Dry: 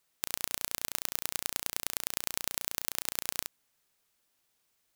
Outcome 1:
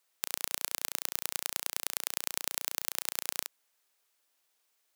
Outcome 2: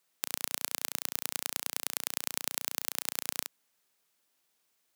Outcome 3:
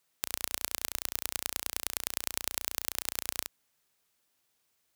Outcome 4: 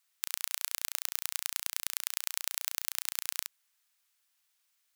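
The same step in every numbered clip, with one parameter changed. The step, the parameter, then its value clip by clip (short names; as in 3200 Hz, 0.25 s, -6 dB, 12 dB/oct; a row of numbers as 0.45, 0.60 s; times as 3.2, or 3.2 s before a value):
HPF, cutoff: 400, 160, 43, 1200 Hz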